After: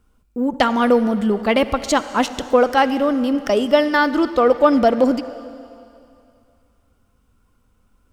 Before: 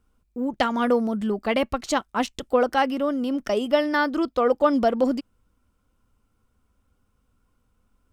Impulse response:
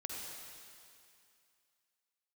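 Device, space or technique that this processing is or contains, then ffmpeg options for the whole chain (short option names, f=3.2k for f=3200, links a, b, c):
saturated reverb return: -filter_complex "[0:a]asplit=2[a][b];[1:a]atrim=start_sample=2205[c];[b][c]afir=irnorm=-1:irlink=0,asoftclip=type=tanh:threshold=-20.5dB,volume=-7.5dB[d];[a][d]amix=inputs=2:normalize=0,volume=4.5dB"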